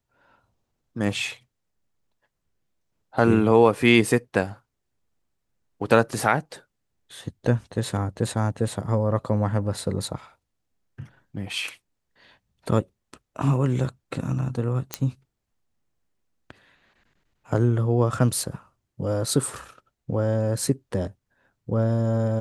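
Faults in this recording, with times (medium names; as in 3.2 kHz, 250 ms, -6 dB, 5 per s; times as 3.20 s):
14.94 s: pop -8 dBFS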